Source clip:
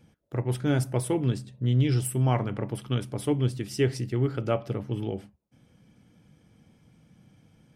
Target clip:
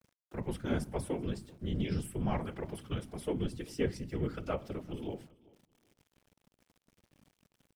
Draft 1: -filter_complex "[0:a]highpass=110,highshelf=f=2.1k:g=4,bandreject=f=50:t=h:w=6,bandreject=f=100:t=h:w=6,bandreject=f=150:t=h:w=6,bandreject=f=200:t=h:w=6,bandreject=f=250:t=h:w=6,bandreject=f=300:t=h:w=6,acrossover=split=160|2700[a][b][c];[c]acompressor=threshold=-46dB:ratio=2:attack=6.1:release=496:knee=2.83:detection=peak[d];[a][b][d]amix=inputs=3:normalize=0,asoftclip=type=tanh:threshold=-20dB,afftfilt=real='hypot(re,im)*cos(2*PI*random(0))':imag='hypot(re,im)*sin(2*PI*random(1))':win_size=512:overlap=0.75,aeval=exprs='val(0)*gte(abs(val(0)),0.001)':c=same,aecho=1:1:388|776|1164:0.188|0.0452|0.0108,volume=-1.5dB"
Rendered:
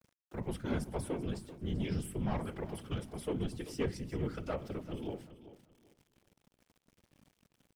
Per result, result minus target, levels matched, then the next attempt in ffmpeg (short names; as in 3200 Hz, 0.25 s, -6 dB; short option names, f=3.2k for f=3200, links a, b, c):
soft clip: distortion +16 dB; echo-to-direct +9 dB
-filter_complex "[0:a]highpass=110,highshelf=f=2.1k:g=4,bandreject=f=50:t=h:w=6,bandreject=f=100:t=h:w=6,bandreject=f=150:t=h:w=6,bandreject=f=200:t=h:w=6,bandreject=f=250:t=h:w=6,bandreject=f=300:t=h:w=6,acrossover=split=160|2700[a][b][c];[c]acompressor=threshold=-46dB:ratio=2:attack=6.1:release=496:knee=2.83:detection=peak[d];[a][b][d]amix=inputs=3:normalize=0,asoftclip=type=tanh:threshold=-10dB,afftfilt=real='hypot(re,im)*cos(2*PI*random(0))':imag='hypot(re,im)*sin(2*PI*random(1))':win_size=512:overlap=0.75,aeval=exprs='val(0)*gte(abs(val(0)),0.001)':c=same,aecho=1:1:388|776|1164:0.188|0.0452|0.0108,volume=-1.5dB"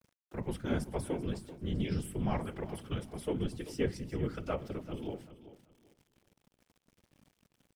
echo-to-direct +9 dB
-filter_complex "[0:a]highpass=110,highshelf=f=2.1k:g=4,bandreject=f=50:t=h:w=6,bandreject=f=100:t=h:w=6,bandreject=f=150:t=h:w=6,bandreject=f=200:t=h:w=6,bandreject=f=250:t=h:w=6,bandreject=f=300:t=h:w=6,acrossover=split=160|2700[a][b][c];[c]acompressor=threshold=-46dB:ratio=2:attack=6.1:release=496:knee=2.83:detection=peak[d];[a][b][d]amix=inputs=3:normalize=0,asoftclip=type=tanh:threshold=-10dB,afftfilt=real='hypot(re,im)*cos(2*PI*random(0))':imag='hypot(re,im)*sin(2*PI*random(1))':win_size=512:overlap=0.75,aeval=exprs='val(0)*gte(abs(val(0)),0.001)':c=same,aecho=1:1:388|776:0.0668|0.016,volume=-1.5dB"